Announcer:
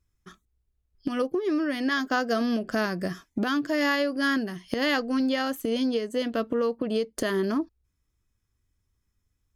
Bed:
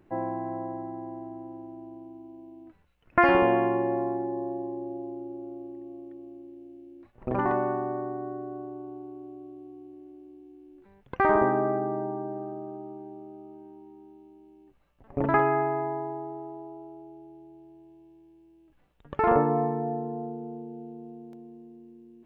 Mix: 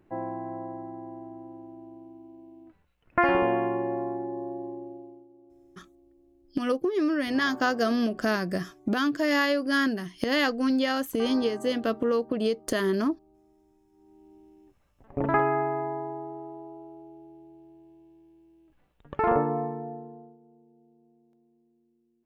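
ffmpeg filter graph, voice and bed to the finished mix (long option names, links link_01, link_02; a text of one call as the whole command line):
ffmpeg -i stem1.wav -i stem2.wav -filter_complex "[0:a]adelay=5500,volume=0.5dB[link_01];[1:a]volume=13.5dB,afade=type=out:start_time=4.69:duration=0.58:silence=0.188365,afade=type=in:start_time=13.9:duration=0.44:silence=0.158489,afade=type=out:start_time=19.22:duration=1.16:silence=0.112202[link_02];[link_01][link_02]amix=inputs=2:normalize=0" out.wav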